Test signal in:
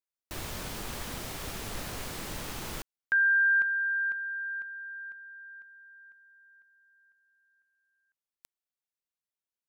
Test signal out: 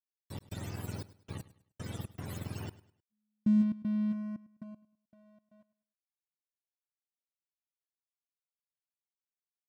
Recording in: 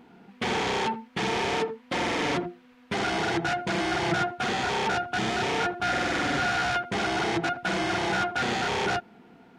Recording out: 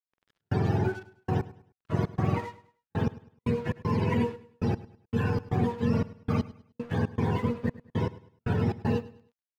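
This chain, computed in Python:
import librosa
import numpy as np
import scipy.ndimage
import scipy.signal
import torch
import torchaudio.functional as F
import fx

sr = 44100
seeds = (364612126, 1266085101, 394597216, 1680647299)

y = fx.octave_mirror(x, sr, pivot_hz=580.0)
y = np.sign(y) * np.maximum(np.abs(y) - 10.0 ** (-47.0 / 20.0), 0.0)
y = fx.step_gate(y, sr, bpm=117, pattern='.xx.xxxx..x..', floor_db=-60.0, edge_ms=4.5)
y = fx.echo_feedback(y, sr, ms=103, feedback_pct=33, wet_db=-18)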